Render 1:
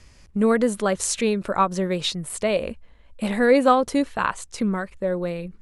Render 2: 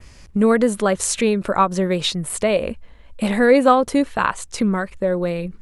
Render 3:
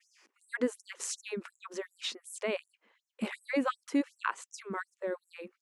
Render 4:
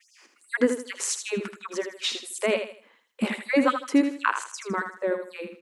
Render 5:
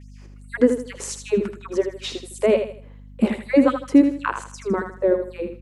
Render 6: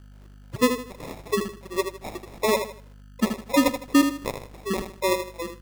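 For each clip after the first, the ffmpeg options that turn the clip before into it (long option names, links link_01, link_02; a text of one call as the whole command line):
ffmpeg -i in.wav -filter_complex "[0:a]adynamicequalizer=threshold=0.00794:dfrequency=5300:dqfactor=1:tfrequency=5300:tqfactor=1:attack=5:release=100:ratio=0.375:range=2:mode=cutabove:tftype=bell,asplit=2[link_01][link_02];[link_02]acompressor=threshold=-28dB:ratio=6,volume=-3dB[link_03];[link_01][link_03]amix=inputs=2:normalize=0,volume=2dB" out.wav
ffmpeg -i in.wav -af "equalizer=frequency=630:width_type=o:width=0.67:gain=-8,equalizer=frequency=4000:width_type=o:width=0.67:gain=-6,equalizer=frequency=10000:width_type=o:width=0.67:gain=-11,afftfilt=real='re*gte(b*sr/1024,210*pow(5700/210,0.5+0.5*sin(2*PI*2.7*pts/sr)))':imag='im*gte(b*sr/1024,210*pow(5700/210,0.5+0.5*sin(2*PI*2.7*pts/sr)))':win_size=1024:overlap=0.75,volume=-9dB" out.wav
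ffmpeg -i in.wav -af "aecho=1:1:79|158|237|316:0.398|0.123|0.0383|0.0119,volume=8.5dB" out.wav
ffmpeg -i in.wav -filter_complex "[0:a]acrossover=split=170|660|2200[link_01][link_02][link_03][link_04];[link_02]dynaudnorm=framelen=120:gausssize=3:maxgain=14dB[link_05];[link_01][link_05][link_03][link_04]amix=inputs=4:normalize=0,aeval=exprs='val(0)+0.0126*(sin(2*PI*50*n/s)+sin(2*PI*2*50*n/s)/2+sin(2*PI*3*50*n/s)/3+sin(2*PI*4*50*n/s)/4+sin(2*PI*5*50*n/s)/5)':channel_layout=same,volume=-3.5dB" out.wav
ffmpeg -i in.wav -af "acrusher=samples=29:mix=1:aa=0.000001,volume=-4.5dB" out.wav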